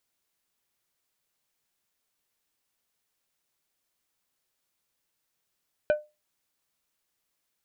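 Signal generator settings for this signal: glass hit plate, lowest mode 602 Hz, decay 0.24 s, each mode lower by 9.5 dB, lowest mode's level -16 dB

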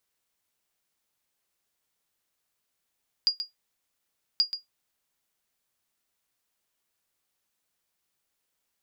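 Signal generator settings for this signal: sonar ping 4840 Hz, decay 0.15 s, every 1.13 s, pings 2, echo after 0.13 s, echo -10 dB -14 dBFS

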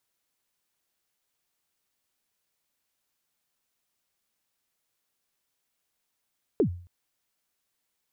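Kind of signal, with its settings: kick drum length 0.27 s, from 480 Hz, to 88 Hz, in 92 ms, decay 0.46 s, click off, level -16 dB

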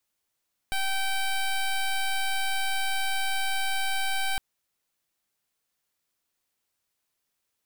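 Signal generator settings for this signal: pulse 775 Hz, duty 12% -26.5 dBFS 3.66 s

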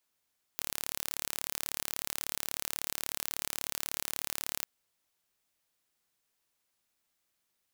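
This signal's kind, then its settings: pulse train 36.4/s, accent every 0, -7 dBFS 4.06 s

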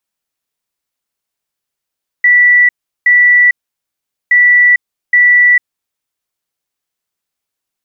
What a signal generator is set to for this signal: beep pattern sine 1960 Hz, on 0.45 s, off 0.37 s, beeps 2, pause 0.80 s, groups 2, -4 dBFS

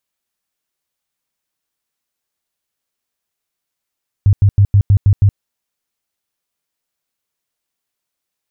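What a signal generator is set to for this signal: tone bursts 100 Hz, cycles 7, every 0.16 s, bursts 7, -5.5 dBFS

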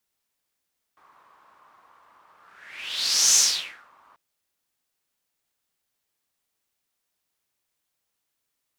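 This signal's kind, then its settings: whoosh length 3.19 s, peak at 2.4, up 1.09 s, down 0.57 s, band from 1100 Hz, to 6200 Hz, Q 4.7, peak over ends 39.5 dB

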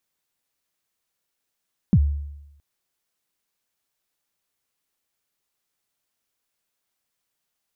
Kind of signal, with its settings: kick drum length 0.67 s, from 230 Hz, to 72 Hz, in 57 ms, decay 0.92 s, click off, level -10 dB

